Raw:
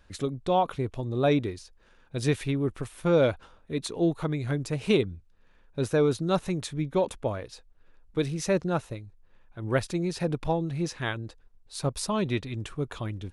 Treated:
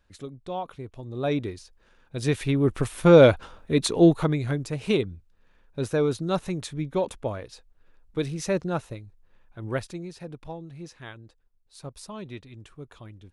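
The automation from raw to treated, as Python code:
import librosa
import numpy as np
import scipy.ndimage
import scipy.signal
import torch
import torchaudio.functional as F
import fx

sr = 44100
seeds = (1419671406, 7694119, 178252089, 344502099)

y = fx.gain(x, sr, db=fx.line((0.89, -8.5), (1.48, -0.5), (2.2, -0.5), (2.83, 8.5), (4.07, 8.5), (4.66, -0.5), (9.6, -0.5), (10.19, -11.0)))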